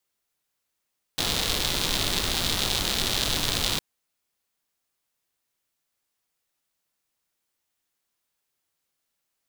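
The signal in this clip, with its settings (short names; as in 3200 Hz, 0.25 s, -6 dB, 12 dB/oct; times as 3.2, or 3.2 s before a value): rain from filtered ticks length 2.61 s, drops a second 160, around 3700 Hz, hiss -0.5 dB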